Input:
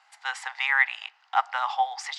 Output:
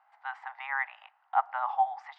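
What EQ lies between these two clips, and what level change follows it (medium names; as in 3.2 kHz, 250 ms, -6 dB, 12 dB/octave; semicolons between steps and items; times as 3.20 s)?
brick-wall FIR high-pass 550 Hz; low-pass 1 kHz 12 dB/octave; 0.0 dB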